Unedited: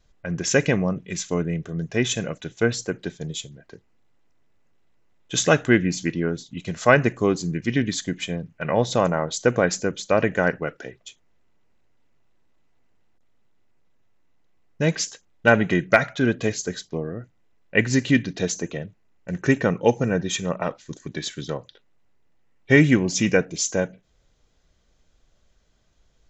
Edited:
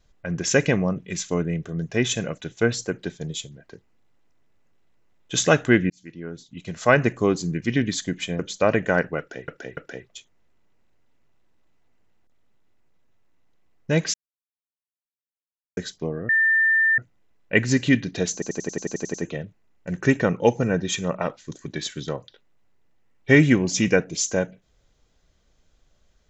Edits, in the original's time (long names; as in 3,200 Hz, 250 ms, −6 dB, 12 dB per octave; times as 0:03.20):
0:05.90–0:07.10: fade in
0:08.39–0:09.88: remove
0:10.68–0:10.97: repeat, 3 plays
0:15.05–0:16.68: silence
0:17.20: insert tone 1,790 Hz −15.5 dBFS 0.69 s
0:18.55: stutter 0.09 s, 10 plays